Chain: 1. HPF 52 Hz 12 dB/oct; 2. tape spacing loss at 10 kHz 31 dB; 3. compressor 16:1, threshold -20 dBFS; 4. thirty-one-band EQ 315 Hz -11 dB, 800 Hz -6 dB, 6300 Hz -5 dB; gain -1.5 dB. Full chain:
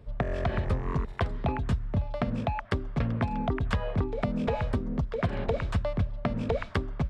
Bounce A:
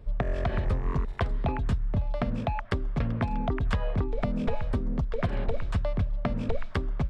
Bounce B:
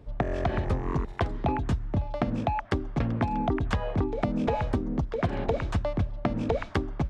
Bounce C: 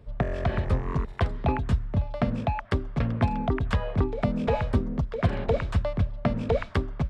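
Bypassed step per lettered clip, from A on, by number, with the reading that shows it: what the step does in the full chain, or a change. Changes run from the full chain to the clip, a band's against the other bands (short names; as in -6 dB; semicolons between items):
1, crest factor change -2.5 dB; 4, 1 kHz band +3.0 dB; 3, mean gain reduction 1.5 dB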